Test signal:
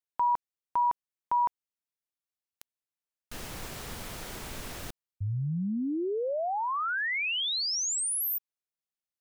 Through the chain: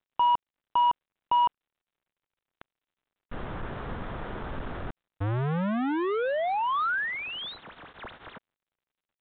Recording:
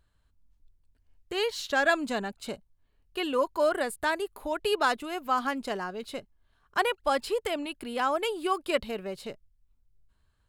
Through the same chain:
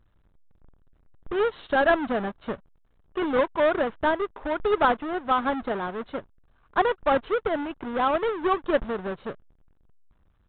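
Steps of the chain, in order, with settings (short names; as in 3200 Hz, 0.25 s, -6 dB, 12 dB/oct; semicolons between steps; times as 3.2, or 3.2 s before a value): half-waves squared off; resonant high shelf 1900 Hz -6.5 dB, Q 1.5; µ-law 64 kbps 8000 Hz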